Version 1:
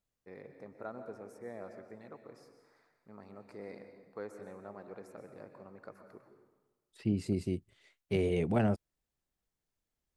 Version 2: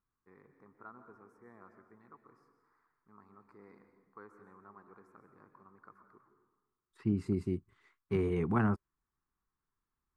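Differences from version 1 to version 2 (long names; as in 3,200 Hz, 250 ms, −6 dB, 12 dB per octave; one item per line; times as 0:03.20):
first voice −9.0 dB
master: add drawn EQ curve 400 Hz 0 dB, 580 Hz −14 dB, 1,100 Hz +12 dB, 2,900 Hz −10 dB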